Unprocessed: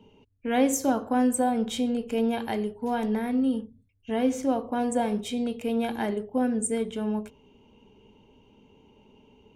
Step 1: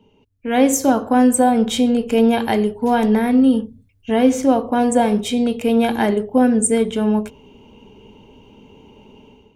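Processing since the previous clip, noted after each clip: level rider gain up to 11.5 dB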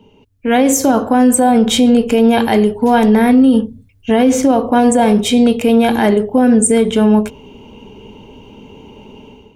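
peak limiter -11.5 dBFS, peak gain reduction 8.5 dB; trim +8 dB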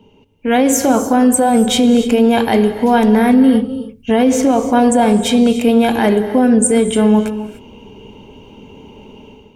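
gated-style reverb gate 320 ms rising, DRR 11 dB; trim -1 dB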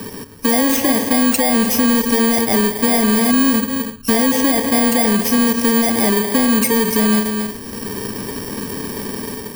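bit-reversed sample order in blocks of 32 samples; saturation -6.5 dBFS, distortion -18 dB; three bands compressed up and down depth 70%; trim -1.5 dB

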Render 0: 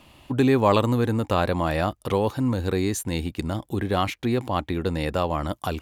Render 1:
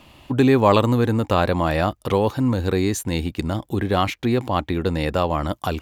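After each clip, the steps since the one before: peaking EQ 10 kHz -4 dB 0.62 oct; trim +3.5 dB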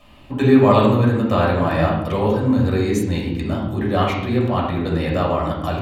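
reverberation RT60 0.85 s, pre-delay 3 ms, DRR -5 dB; trim -7.5 dB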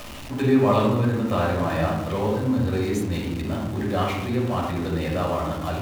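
jump at every zero crossing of -26 dBFS; trim -6.5 dB

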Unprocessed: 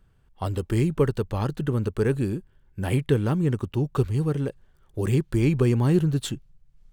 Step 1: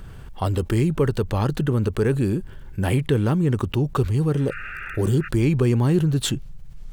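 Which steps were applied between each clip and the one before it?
spectral replace 4.39–5.25 s, 1.2–2.8 kHz before; level flattener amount 50%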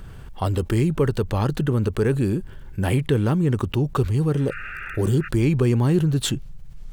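no audible change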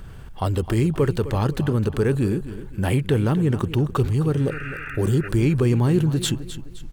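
feedback delay 259 ms, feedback 37%, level -13.5 dB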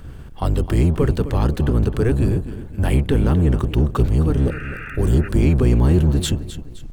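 octave divider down 1 oct, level +3 dB

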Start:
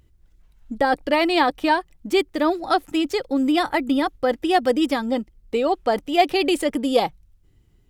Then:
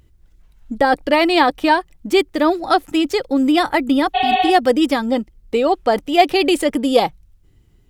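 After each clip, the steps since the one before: spectral replace 4.17–4.47 s, 390–4500 Hz after; trim +4.5 dB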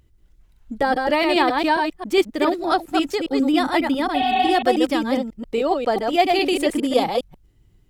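chunks repeated in reverse 136 ms, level -3.5 dB; trim -5 dB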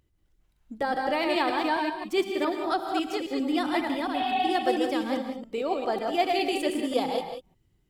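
bass shelf 90 Hz -8 dB; gated-style reverb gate 210 ms rising, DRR 6 dB; trim -8 dB

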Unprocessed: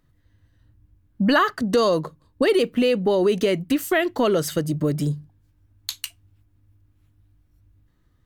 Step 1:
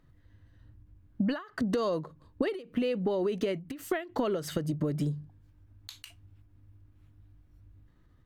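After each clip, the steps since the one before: treble shelf 4.6 kHz -10 dB; compression 12:1, threshold -28 dBFS, peak gain reduction 14.5 dB; endings held to a fixed fall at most 150 dB/s; trim +2 dB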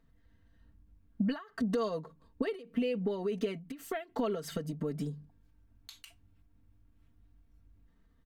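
comb 4.4 ms, depth 74%; trim -6 dB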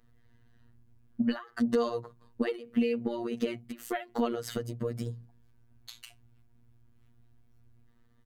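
robot voice 118 Hz; trim +5.5 dB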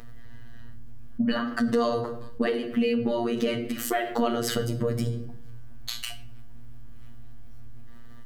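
simulated room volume 87 m³, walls mixed, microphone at 0.36 m; level flattener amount 50%; trim +2 dB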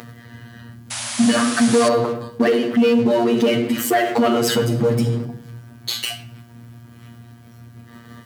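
waveshaping leveller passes 3; painted sound noise, 0.90–1.89 s, 550–11000 Hz -28 dBFS; high-pass 110 Hz 24 dB/octave

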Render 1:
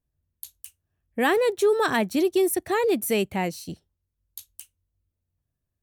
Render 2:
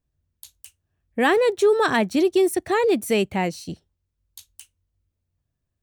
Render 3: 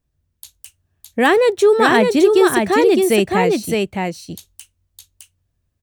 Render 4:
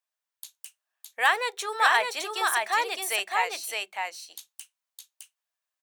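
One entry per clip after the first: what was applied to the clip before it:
peaking EQ 13 kHz -11.5 dB 0.61 oct; trim +3 dB
delay 612 ms -3.5 dB; trim +5 dB
high-pass 790 Hz 24 dB/octave; on a send at -17 dB: reverberation RT60 0.15 s, pre-delay 3 ms; on the sum: trim -4.5 dB

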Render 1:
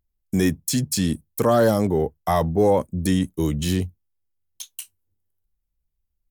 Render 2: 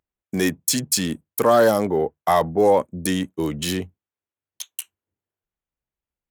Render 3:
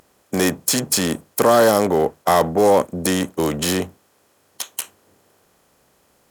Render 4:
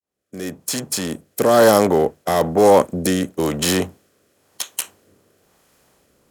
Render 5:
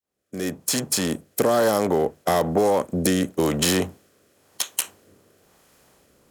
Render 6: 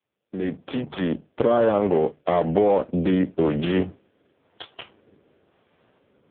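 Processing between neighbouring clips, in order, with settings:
local Wiener filter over 9 samples; high-pass 540 Hz 6 dB/octave; trim +5.5 dB
spectral levelling over time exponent 0.6
fade-in on the opening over 1.74 s; rotary cabinet horn 1 Hz; trim +3 dB
compression 10:1, threshold -17 dBFS, peak gain reduction 10 dB; trim +1 dB
in parallel at -12 dB: decimation with a swept rate 20×, swing 60% 0.62 Hz; on the sum: AMR-NB 4.75 kbps 8 kHz

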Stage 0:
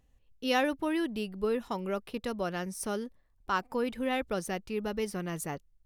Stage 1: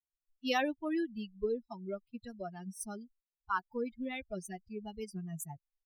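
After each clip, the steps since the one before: expander on every frequency bin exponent 3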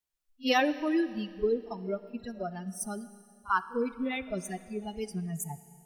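reverse echo 45 ms -19.5 dB; Schroeder reverb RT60 2.3 s, combs from 27 ms, DRR 14 dB; trim +6 dB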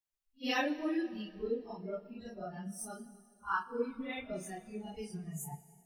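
phase randomisation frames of 100 ms; trim -6 dB

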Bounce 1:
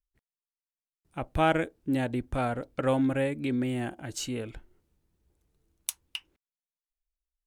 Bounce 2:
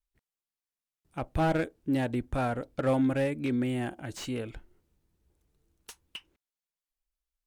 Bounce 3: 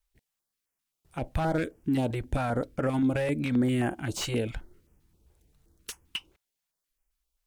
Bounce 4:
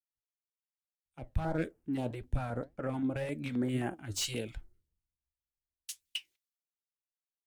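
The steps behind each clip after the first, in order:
wow and flutter 20 cents; slew-rate limiter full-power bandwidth 57 Hz
peak limiter -26.5 dBFS, peak gain reduction 11 dB; step-sequenced notch 7.6 Hz 250–3900 Hz; trim +8 dB
flange 1.8 Hz, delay 4.7 ms, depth 6.2 ms, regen +75%; three bands expanded up and down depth 100%; trim -3.5 dB

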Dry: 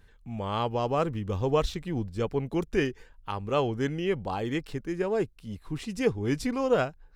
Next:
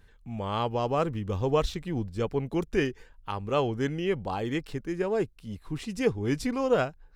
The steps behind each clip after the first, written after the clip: no audible change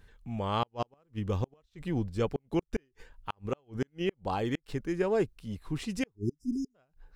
inverted gate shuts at -18 dBFS, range -41 dB; spectral selection erased 6.16–6.75 s, 430–4900 Hz

